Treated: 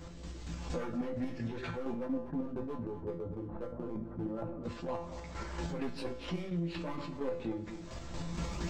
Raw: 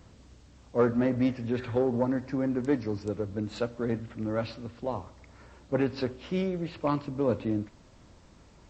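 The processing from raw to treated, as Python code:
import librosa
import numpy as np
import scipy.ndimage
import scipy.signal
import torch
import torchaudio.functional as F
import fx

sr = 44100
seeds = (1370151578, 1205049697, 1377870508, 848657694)

y = fx.tracing_dist(x, sr, depth_ms=0.036)
y = fx.recorder_agc(y, sr, target_db=-21.5, rise_db_per_s=31.0, max_gain_db=30)
y = fx.lowpass(y, sr, hz=1100.0, slope=24, at=(1.92, 4.64))
y = np.clip(y, -10.0 ** (-23.5 / 20.0), 10.0 ** (-23.5 / 20.0))
y = fx.chorus_voices(y, sr, voices=6, hz=0.92, base_ms=15, depth_ms=3.6, mix_pct=50)
y = fx.chopper(y, sr, hz=4.3, depth_pct=60, duty_pct=35)
y = fx.comb_fb(y, sr, f0_hz=170.0, decay_s=0.31, harmonics='all', damping=0.0, mix_pct=80)
y = y + 10.0 ** (-18.0 / 20.0) * np.pad(y, (int(243 * sr / 1000.0), 0))[:len(y)]
y = fx.env_flatten(y, sr, amount_pct=50)
y = F.gain(torch.from_numpy(y), 3.5).numpy()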